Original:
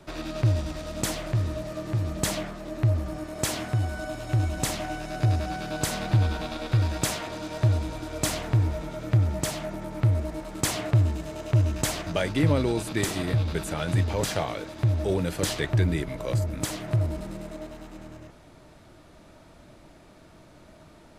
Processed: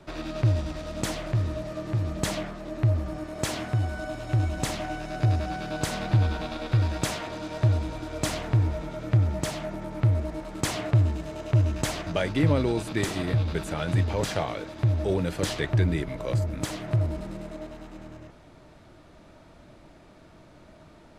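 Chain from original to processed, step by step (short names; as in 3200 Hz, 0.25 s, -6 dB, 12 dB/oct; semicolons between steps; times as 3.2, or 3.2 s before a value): high shelf 7700 Hz -9.5 dB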